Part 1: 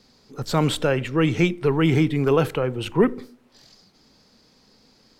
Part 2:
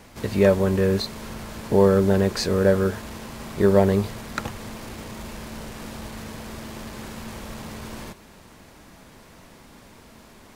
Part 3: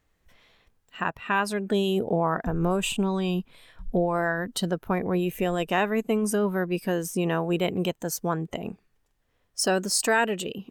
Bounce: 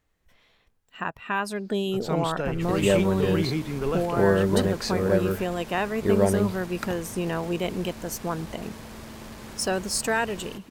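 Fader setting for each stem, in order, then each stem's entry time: −9.0, −4.5, −2.5 decibels; 1.55, 2.45, 0.00 seconds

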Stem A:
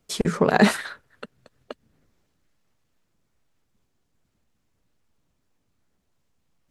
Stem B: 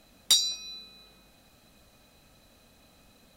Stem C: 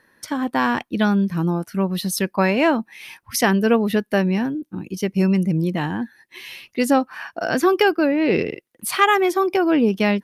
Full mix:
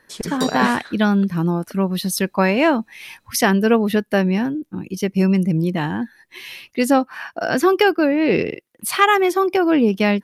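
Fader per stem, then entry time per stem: −5.0, −9.0, +1.5 decibels; 0.00, 0.10, 0.00 seconds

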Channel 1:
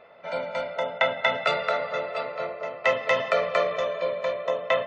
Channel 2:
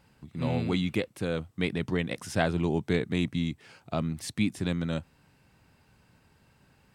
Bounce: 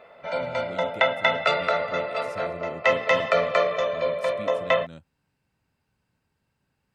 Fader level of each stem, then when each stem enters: +2.0, −13.0 decibels; 0.00, 0.00 seconds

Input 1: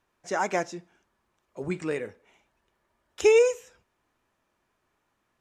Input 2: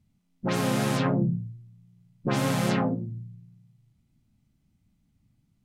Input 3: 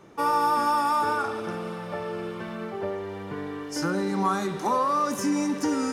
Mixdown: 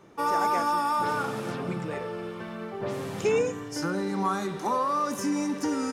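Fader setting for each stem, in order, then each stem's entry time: −6.5, −12.0, −2.5 decibels; 0.00, 0.55, 0.00 seconds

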